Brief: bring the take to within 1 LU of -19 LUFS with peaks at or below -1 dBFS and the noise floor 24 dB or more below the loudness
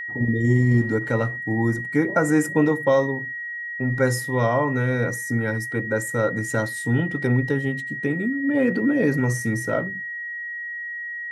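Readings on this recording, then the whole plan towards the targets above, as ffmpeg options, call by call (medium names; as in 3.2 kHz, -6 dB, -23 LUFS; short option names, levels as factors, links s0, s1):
steady tone 1.9 kHz; tone level -29 dBFS; loudness -23.0 LUFS; peak level -7.5 dBFS; loudness target -19.0 LUFS
-> -af "bandreject=f=1900:w=30"
-af "volume=1.58"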